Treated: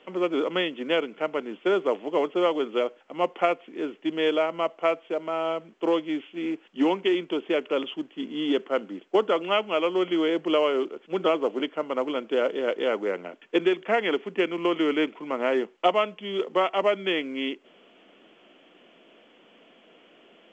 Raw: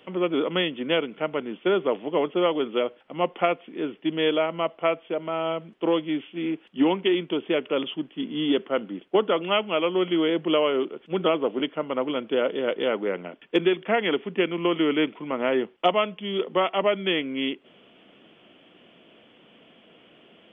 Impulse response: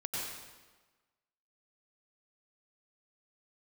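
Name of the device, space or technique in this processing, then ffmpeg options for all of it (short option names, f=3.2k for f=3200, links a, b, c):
telephone: -af "highpass=260,lowpass=3.2k" -ar 16000 -c:a pcm_mulaw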